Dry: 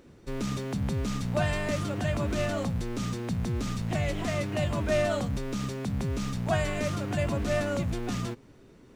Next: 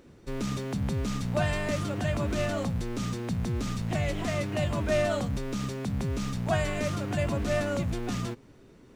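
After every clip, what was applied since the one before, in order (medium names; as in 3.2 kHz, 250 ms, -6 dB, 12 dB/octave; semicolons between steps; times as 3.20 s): no audible change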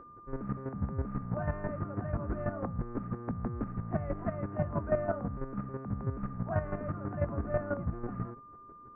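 square tremolo 6.1 Hz, depth 65%, duty 20%; steep low-pass 1.6 kHz 36 dB/octave; whistle 1.2 kHz -50 dBFS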